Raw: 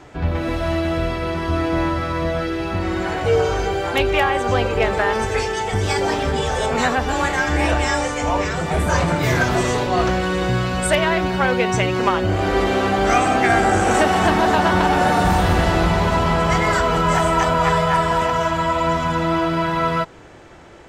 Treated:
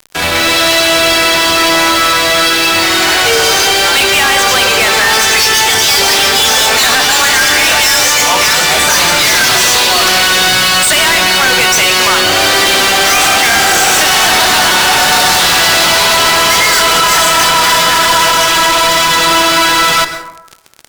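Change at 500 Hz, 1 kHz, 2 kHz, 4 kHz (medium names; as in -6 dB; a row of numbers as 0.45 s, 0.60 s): +3.5 dB, +7.5 dB, +13.5 dB, +21.5 dB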